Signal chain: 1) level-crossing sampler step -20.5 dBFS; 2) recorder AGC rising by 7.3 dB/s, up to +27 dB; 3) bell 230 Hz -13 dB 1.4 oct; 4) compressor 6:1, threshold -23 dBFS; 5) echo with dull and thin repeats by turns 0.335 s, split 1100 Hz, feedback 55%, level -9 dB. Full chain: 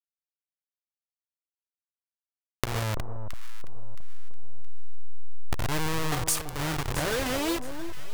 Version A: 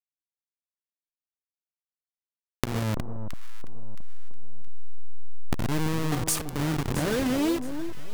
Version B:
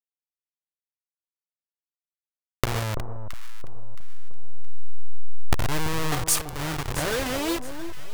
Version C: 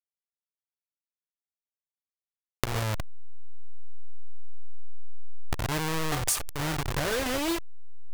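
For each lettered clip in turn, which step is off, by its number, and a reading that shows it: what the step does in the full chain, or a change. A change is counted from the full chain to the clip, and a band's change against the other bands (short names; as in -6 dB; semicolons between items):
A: 3, 250 Hz band +7.5 dB; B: 4, mean gain reduction 2.5 dB; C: 5, echo-to-direct -11.5 dB to none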